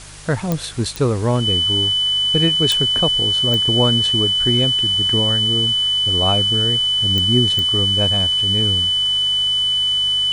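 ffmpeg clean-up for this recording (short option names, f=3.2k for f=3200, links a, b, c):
-af "adeclick=t=4,bandreject=f=50.5:t=h:w=4,bandreject=f=101:t=h:w=4,bandreject=f=151.5:t=h:w=4,bandreject=f=3k:w=30,afwtdn=0.014"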